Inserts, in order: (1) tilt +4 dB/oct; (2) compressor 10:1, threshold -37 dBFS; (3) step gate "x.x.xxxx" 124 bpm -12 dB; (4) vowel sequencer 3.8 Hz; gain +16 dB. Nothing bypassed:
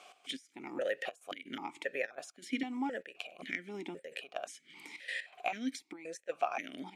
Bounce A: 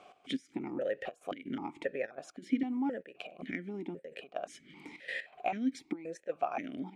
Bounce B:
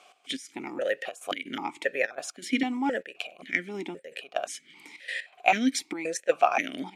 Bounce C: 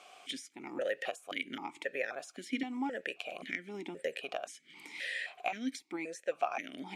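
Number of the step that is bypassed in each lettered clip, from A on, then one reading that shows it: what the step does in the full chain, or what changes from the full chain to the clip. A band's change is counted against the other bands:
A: 1, 125 Hz band +9.5 dB; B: 2, mean gain reduction 8.0 dB; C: 3, momentary loudness spread change -3 LU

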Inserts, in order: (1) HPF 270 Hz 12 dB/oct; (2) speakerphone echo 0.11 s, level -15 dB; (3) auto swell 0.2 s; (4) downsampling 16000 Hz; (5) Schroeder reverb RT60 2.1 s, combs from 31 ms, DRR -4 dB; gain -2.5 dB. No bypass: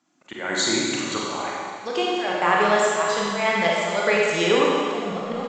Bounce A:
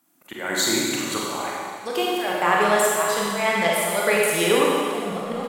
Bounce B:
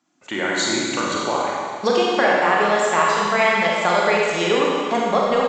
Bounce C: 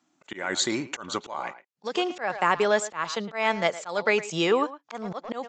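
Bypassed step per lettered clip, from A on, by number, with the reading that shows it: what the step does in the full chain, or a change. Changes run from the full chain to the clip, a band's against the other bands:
4, 8 kHz band +4.0 dB; 3, 1 kHz band +2.5 dB; 5, loudness change -5.0 LU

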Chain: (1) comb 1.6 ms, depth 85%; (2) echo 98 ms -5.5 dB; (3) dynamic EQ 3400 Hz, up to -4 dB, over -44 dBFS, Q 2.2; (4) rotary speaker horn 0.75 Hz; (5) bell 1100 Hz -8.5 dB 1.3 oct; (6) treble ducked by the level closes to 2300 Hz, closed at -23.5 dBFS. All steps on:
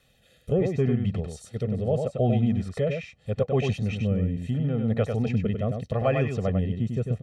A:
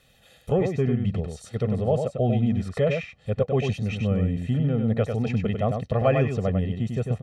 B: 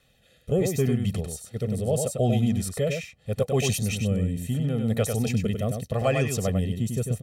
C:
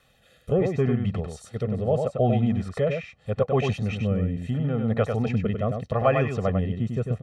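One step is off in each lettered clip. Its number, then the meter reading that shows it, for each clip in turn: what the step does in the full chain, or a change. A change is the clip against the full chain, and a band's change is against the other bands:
4, 1 kHz band +1.5 dB; 6, 4 kHz band +7.5 dB; 5, 1 kHz band +4.5 dB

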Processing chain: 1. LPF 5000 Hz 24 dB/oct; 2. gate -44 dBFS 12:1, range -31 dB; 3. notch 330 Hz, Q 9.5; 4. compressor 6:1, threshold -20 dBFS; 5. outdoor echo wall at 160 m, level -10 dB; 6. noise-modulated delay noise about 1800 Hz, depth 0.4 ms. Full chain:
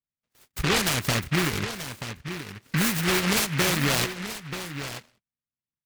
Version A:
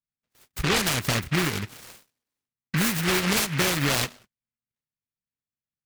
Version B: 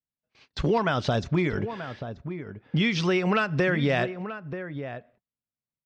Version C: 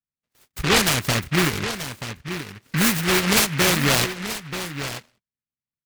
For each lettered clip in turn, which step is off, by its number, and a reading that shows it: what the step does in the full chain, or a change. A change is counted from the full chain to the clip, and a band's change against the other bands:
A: 5, momentary loudness spread change -4 LU; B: 6, 8 kHz band -21.0 dB; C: 4, mean gain reduction 3.0 dB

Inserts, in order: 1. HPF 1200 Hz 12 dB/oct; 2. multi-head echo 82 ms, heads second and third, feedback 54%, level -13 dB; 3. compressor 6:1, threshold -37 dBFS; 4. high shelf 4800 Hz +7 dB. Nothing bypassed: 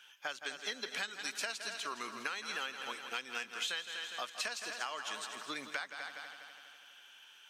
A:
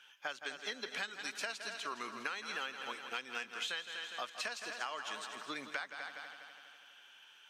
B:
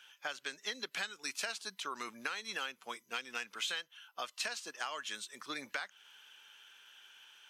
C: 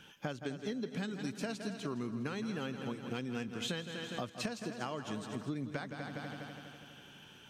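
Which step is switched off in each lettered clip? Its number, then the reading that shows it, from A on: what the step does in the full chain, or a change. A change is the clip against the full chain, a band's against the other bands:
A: 4, 8 kHz band -4.5 dB; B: 2, momentary loudness spread change +5 LU; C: 1, 250 Hz band +22.0 dB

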